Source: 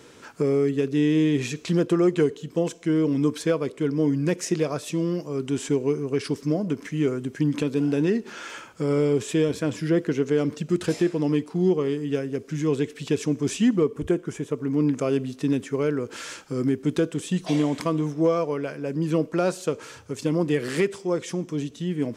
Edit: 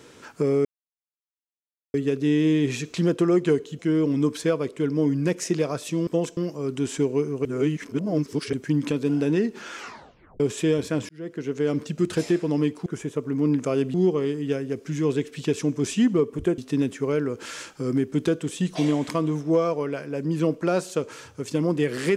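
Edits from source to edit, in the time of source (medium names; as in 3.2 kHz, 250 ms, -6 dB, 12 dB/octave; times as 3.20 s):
0.65 s: insert silence 1.29 s
2.50–2.80 s: move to 5.08 s
6.16–7.24 s: reverse
8.47 s: tape stop 0.64 s
9.80–10.49 s: fade in
14.21–15.29 s: move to 11.57 s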